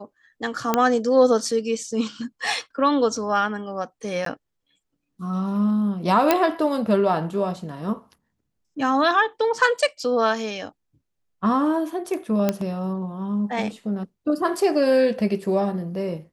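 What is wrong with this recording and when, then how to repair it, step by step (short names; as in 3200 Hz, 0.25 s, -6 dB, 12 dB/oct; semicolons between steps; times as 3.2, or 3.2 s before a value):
0.74 pop -5 dBFS
4.25–4.26 gap 13 ms
6.31 pop -3 dBFS
12.49 pop -7 dBFS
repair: de-click; interpolate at 4.25, 13 ms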